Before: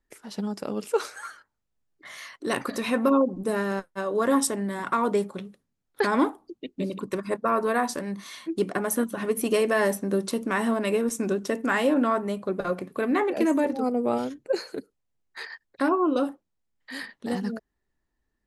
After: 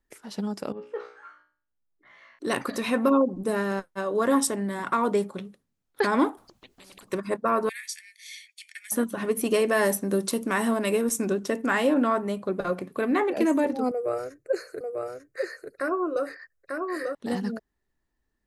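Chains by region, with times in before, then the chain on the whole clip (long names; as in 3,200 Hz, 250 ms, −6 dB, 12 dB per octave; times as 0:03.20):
0:00.72–0:02.39: phase distortion by the signal itself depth 0.15 ms + low-pass filter 2,100 Hz + tuned comb filter 60 Hz, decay 0.43 s, mix 90%
0:06.37–0:07.11: downward compressor 4 to 1, threshold −40 dBFS + low-shelf EQ 90 Hz +11.5 dB + every bin compressed towards the loudest bin 4 to 1
0:07.69–0:08.92: Chebyshev high-pass with heavy ripple 1,700 Hz, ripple 3 dB + comb filter 0.9 ms, depth 56%
0:09.73–0:11.25: high-shelf EQ 7,700 Hz +9.5 dB + one half of a high-frequency compander encoder only
0:13.91–0:17.15: phaser with its sweep stopped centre 890 Hz, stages 6 + single-tap delay 894 ms −4 dB
whole clip: no processing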